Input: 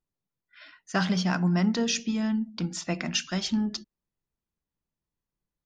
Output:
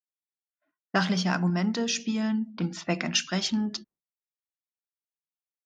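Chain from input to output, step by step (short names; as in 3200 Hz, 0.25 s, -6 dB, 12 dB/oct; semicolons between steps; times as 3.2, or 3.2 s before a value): HPF 150 Hz 6 dB/oct; low-pass opened by the level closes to 430 Hz, open at -26 dBFS; expander -54 dBFS; random-step tremolo 2 Hz; gain +3.5 dB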